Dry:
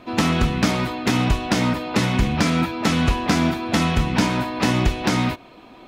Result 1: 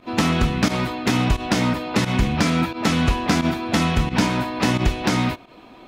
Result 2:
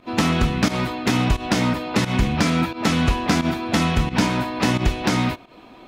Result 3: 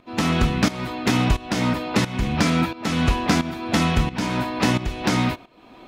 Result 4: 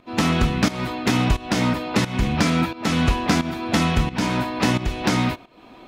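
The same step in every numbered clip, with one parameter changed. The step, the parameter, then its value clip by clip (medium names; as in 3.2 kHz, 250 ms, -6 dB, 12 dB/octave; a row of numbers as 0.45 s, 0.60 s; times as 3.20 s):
volume shaper, release: 74 ms, 109 ms, 497 ms, 335 ms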